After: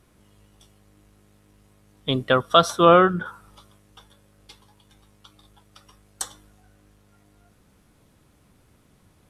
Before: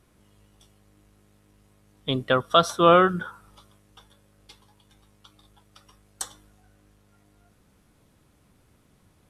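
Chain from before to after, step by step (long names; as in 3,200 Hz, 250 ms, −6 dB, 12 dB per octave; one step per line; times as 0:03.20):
0:02.85–0:03.26: high-shelf EQ 4,000 Hz −9.5 dB
level +2.5 dB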